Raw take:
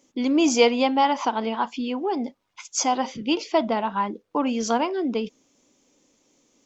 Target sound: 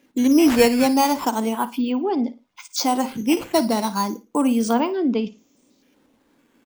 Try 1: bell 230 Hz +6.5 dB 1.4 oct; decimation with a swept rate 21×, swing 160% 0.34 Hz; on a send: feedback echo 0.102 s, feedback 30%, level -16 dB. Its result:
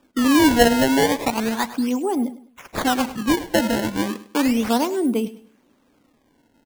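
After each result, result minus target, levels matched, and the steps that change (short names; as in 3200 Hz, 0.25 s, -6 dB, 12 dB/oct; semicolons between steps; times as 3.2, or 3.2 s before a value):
echo 46 ms late; decimation with a swept rate: distortion +11 dB
change: feedback echo 56 ms, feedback 30%, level -16 dB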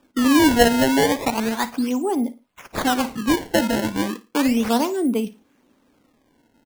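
decimation with a swept rate: distortion +11 dB
change: decimation with a swept rate 5×, swing 160% 0.34 Hz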